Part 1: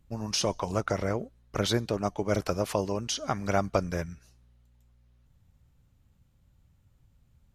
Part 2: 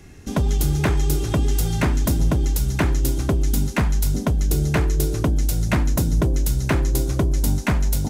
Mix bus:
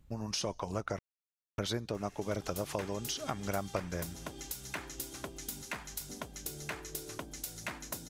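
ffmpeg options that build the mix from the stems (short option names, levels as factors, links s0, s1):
-filter_complex "[0:a]volume=1.12,asplit=3[s0][s1][s2];[s0]atrim=end=0.99,asetpts=PTS-STARTPTS,afade=t=out:st=0.986:d=0.004:c=hsin[s3];[s1]atrim=start=0.99:end=1.58,asetpts=PTS-STARTPTS,volume=0[s4];[s2]atrim=start=1.58,asetpts=PTS-STARTPTS,afade=t=in:d=0.004:c=hsin[s5];[s3][s4][s5]concat=n=3:v=0:a=1[s6];[1:a]highpass=f=1100:p=1,acompressor=mode=upward:threshold=0.0224:ratio=2.5,adelay=1950,volume=0.422[s7];[s6][s7]amix=inputs=2:normalize=0,acompressor=threshold=0.0112:ratio=2"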